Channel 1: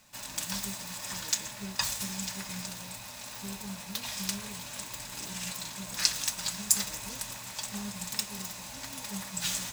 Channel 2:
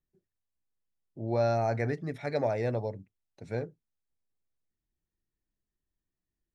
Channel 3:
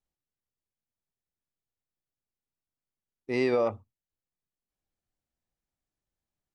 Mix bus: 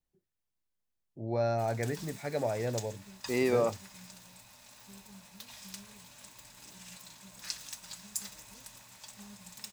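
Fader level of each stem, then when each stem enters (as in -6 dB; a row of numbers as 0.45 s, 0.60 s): -12.5 dB, -3.0 dB, -2.0 dB; 1.45 s, 0.00 s, 0.00 s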